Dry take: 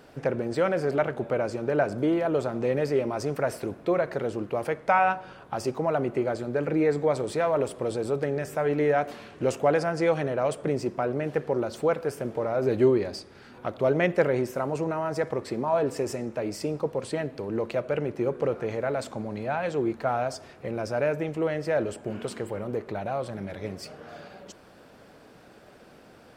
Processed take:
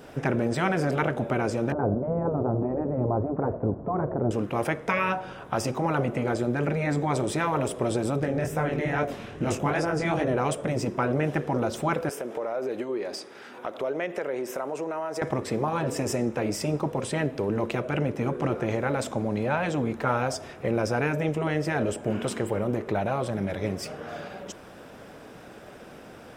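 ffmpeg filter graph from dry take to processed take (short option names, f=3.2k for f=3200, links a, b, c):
-filter_complex "[0:a]asettb=1/sr,asplit=3[a][b][c];[a]atrim=end=1.724[d];[b]atrim=start=1.72:end=4.31,asetpts=PTS-STARTPTS,afade=t=in:d=0.004:c=qsin,afade=t=out:st=2.586:d=0.004:c=qsin,lowpass=f=1k:w=0.5412,lowpass=f=1k:w=1.3066,equalizer=f=79:w=0.79:g=9.5[e];[c]atrim=start=4.306[f];[d][e]acrossfade=d=0.004:c1=hsin:c2=qsin[g];[g][f]acrossfade=d=0.004:c1=qsin:c2=hsin,asettb=1/sr,asplit=3[h][i][j];[h]atrim=end=8.204[k];[i]atrim=start=8.2:end=10.36,asetpts=PTS-STARTPTS,afade=t=in:d=0.004:c=qsin,afade=t=out:st=2.156:d=0.004:c=qsin,lowshelf=f=190:g=10,flanger=delay=18:depth=7.7:speed=2.4[l];[j]atrim=start=10.356[m];[k][l]acrossfade=d=0.004:c1=hsin:c2=qsin[n];[n][m]acrossfade=d=0.004:c1=qsin:c2=hsin,asettb=1/sr,asplit=3[o][p][q];[o]atrim=end=12.094[r];[p]atrim=start=12.09:end=15.22,asetpts=PTS-STARTPTS,afade=t=in:d=0.004:c=qsin,afade=t=out:st=3.126:d=0.004:c=qsin,highpass=330,acompressor=threshold=-37dB:ratio=2.5:attack=3.2:release=140:knee=1:detection=peak[s];[q]atrim=start=15.216[t];[r][s]acrossfade=d=0.004:c1=hsin:c2=qsin[u];[u][t]acrossfade=d=0.004:c1=qsin:c2=hsin,bandreject=f=4.4k:w=6.6,afftfilt=real='re*lt(hypot(re,im),0.282)':imag='im*lt(hypot(re,im),0.282)':win_size=1024:overlap=0.75,adynamicequalizer=threshold=0.00631:dfrequency=1600:dqfactor=0.86:tfrequency=1600:tqfactor=0.86:attack=5:release=100:ratio=0.375:range=1.5:mode=cutabove:tftype=bell,volume=6.5dB"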